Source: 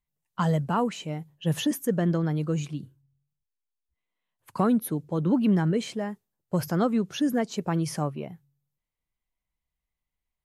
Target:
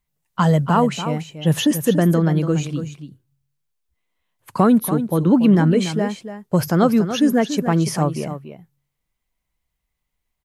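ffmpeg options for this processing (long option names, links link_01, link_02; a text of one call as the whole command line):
ffmpeg -i in.wav -af "aecho=1:1:286:0.299,volume=8.5dB" out.wav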